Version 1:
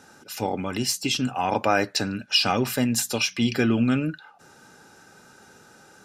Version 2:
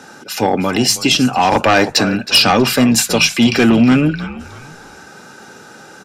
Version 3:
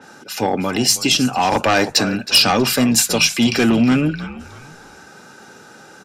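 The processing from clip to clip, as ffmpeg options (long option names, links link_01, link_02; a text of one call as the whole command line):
ffmpeg -i in.wav -filter_complex "[0:a]asplit=4[link_01][link_02][link_03][link_04];[link_02]adelay=319,afreqshift=-75,volume=-15dB[link_05];[link_03]adelay=638,afreqshift=-150,volume=-24.4dB[link_06];[link_04]adelay=957,afreqshift=-225,volume=-33.7dB[link_07];[link_01][link_05][link_06][link_07]amix=inputs=4:normalize=0,acrossover=split=120|6300[link_08][link_09][link_10];[link_09]aeval=exprs='0.398*sin(PI/2*2.24*val(0)/0.398)':channel_layout=same[link_11];[link_10]acontrast=39[link_12];[link_08][link_11][link_12]amix=inputs=3:normalize=0,volume=2.5dB" out.wav
ffmpeg -i in.wav -af "adynamicequalizer=threshold=0.0631:dfrequency=4300:dqfactor=0.7:tfrequency=4300:tqfactor=0.7:attack=5:release=100:ratio=0.375:range=2.5:mode=boostabove:tftype=highshelf,volume=-4dB" out.wav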